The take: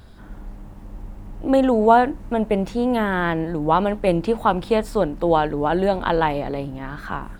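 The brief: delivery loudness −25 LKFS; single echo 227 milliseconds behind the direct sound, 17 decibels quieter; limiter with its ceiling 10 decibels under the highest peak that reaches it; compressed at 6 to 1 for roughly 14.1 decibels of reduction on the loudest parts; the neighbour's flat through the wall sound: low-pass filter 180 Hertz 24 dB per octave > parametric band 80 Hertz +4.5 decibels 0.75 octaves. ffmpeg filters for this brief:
ffmpeg -i in.wav -af "acompressor=threshold=-24dB:ratio=6,alimiter=limit=-21.5dB:level=0:latency=1,lowpass=frequency=180:width=0.5412,lowpass=frequency=180:width=1.3066,equalizer=frequency=80:width_type=o:width=0.75:gain=4.5,aecho=1:1:227:0.141,volume=15.5dB" out.wav

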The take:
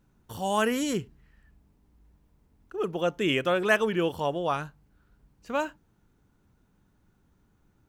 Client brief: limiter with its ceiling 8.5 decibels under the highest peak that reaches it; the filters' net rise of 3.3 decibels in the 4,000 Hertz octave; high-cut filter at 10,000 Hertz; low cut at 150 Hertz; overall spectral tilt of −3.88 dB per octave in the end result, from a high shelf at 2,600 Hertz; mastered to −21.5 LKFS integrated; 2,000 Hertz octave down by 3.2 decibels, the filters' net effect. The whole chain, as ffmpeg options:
ffmpeg -i in.wav -af "highpass=150,lowpass=10000,equalizer=frequency=2000:width_type=o:gain=-7.5,highshelf=frequency=2600:gain=4,equalizer=frequency=4000:width_type=o:gain=5.5,volume=8.5dB,alimiter=limit=-9.5dB:level=0:latency=1" out.wav

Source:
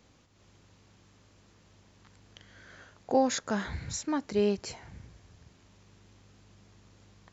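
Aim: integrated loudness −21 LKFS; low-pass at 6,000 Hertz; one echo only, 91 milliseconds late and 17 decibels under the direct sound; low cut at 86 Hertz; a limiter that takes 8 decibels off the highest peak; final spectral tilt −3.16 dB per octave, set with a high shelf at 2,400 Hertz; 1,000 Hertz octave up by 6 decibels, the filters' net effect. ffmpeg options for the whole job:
ffmpeg -i in.wav -af "highpass=86,lowpass=6000,equalizer=frequency=1000:width_type=o:gain=7,highshelf=frequency=2400:gain=8,alimiter=limit=-18dB:level=0:latency=1,aecho=1:1:91:0.141,volume=10dB" out.wav

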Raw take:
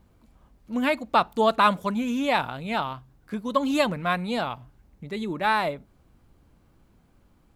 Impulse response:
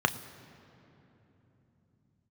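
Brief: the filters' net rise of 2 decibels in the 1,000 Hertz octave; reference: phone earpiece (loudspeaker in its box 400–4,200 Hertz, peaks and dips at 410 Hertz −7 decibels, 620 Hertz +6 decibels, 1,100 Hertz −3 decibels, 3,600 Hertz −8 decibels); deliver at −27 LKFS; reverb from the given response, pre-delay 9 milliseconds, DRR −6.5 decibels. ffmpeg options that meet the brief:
-filter_complex "[0:a]equalizer=frequency=1000:width_type=o:gain=3.5,asplit=2[link_01][link_02];[1:a]atrim=start_sample=2205,adelay=9[link_03];[link_02][link_03]afir=irnorm=-1:irlink=0,volume=-5.5dB[link_04];[link_01][link_04]amix=inputs=2:normalize=0,highpass=400,equalizer=frequency=410:width_type=q:width=4:gain=-7,equalizer=frequency=620:width_type=q:width=4:gain=6,equalizer=frequency=1100:width_type=q:width=4:gain=-3,equalizer=frequency=3600:width_type=q:width=4:gain=-8,lowpass=frequency=4200:width=0.5412,lowpass=frequency=4200:width=1.3066,volume=-10.5dB"

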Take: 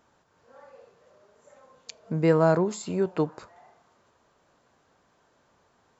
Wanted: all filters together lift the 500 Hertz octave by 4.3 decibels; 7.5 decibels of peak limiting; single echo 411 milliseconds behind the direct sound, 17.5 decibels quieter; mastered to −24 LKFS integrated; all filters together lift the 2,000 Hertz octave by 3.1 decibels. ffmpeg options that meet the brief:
ffmpeg -i in.wav -af "equalizer=frequency=500:width_type=o:gain=5,equalizer=frequency=2000:width_type=o:gain=4,alimiter=limit=-13dB:level=0:latency=1,aecho=1:1:411:0.133,volume=1dB" out.wav

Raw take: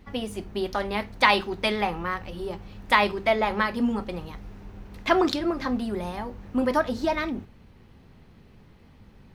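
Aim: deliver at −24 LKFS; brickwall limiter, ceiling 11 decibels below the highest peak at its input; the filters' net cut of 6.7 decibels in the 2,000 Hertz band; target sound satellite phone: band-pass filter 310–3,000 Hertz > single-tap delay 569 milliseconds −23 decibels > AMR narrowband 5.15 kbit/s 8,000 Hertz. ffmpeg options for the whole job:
ffmpeg -i in.wav -af "equalizer=frequency=2000:width_type=o:gain=-7,alimiter=limit=-19dB:level=0:latency=1,highpass=310,lowpass=3000,aecho=1:1:569:0.0708,volume=9.5dB" -ar 8000 -c:a libopencore_amrnb -b:a 5150 out.amr

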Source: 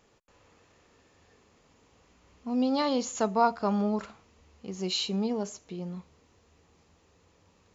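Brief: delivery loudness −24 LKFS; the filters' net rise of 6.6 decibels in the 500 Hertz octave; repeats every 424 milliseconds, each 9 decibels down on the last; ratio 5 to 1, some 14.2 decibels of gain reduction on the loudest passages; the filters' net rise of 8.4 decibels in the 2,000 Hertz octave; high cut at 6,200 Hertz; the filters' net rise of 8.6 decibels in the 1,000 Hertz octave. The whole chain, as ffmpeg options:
ffmpeg -i in.wav -af "lowpass=6200,equalizer=frequency=500:width_type=o:gain=5.5,equalizer=frequency=1000:width_type=o:gain=7,equalizer=frequency=2000:width_type=o:gain=8.5,acompressor=threshold=-26dB:ratio=5,aecho=1:1:424|848|1272|1696:0.355|0.124|0.0435|0.0152,volume=8dB" out.wav

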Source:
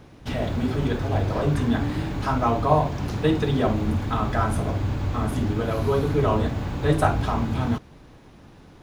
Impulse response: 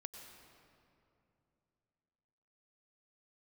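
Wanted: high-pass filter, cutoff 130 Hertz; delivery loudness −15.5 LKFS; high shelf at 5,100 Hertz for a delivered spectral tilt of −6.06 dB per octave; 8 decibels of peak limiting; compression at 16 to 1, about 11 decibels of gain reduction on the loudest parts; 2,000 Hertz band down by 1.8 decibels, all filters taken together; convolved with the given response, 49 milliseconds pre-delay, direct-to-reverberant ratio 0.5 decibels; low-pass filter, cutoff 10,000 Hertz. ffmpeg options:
-filter_complex "[0:a]highpass=130,lowpass=10000,equalizer=frequency=2000:width_type=o:gain=-3.5,highshelf=frequency=5100:gain=7.5,acompressor=threshold=-26dB:ratio=16,alimiter=level_in=0.5dB:limit=-24dB:level=0:latency=1,volume=-0.5dB,asplit=2[link_01][link_02];[1:a]atrim=start_sample=2205,adelay=49[link_03];[link_02][link_03]afir=irnorm=-1:irlink=0,volume=3.5dB[link_04];[link_01][link_04]amix=inputs=2:normalize=0,volume=15.5dB"

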